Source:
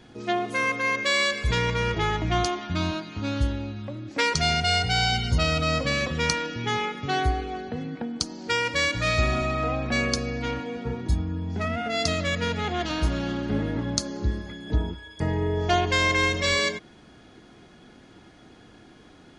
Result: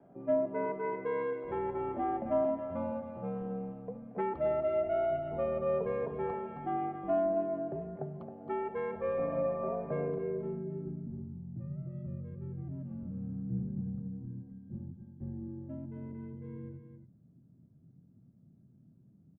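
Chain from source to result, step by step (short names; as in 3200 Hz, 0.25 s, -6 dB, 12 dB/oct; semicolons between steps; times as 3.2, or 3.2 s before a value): low-pass sweep 760 Hz -> 220 Hz, 9.86–11.33; echo 0.269 s -9 dB; mistuned SSB -87 Hz 230–3100 Hz; gain -8.5 dB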